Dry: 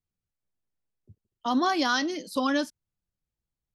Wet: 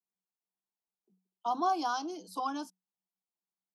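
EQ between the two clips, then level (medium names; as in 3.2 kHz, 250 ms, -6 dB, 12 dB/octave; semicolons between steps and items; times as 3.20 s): dynamic bell 3.8 kHz, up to -7 dB, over -47 dBFS, Q 3.1; rippled Chebyshev high-pass 180 Hz, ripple 9 dB; static phaser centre 380 Hz, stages 8; +1.5 dB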